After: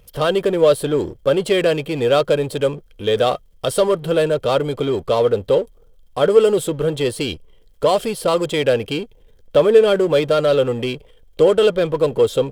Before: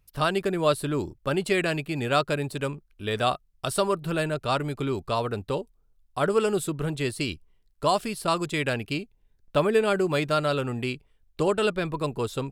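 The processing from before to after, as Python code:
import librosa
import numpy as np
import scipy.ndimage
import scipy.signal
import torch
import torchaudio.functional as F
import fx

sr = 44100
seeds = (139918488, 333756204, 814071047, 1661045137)

y = fx.power_curve(x, sr, exponent=0.7)
y = fx.small_body(y, sr, hz=(500.0, 3200.0), ring_ms=30, db=16)
y = F.gain(torch.from_numpy(y), -1.5).numpy()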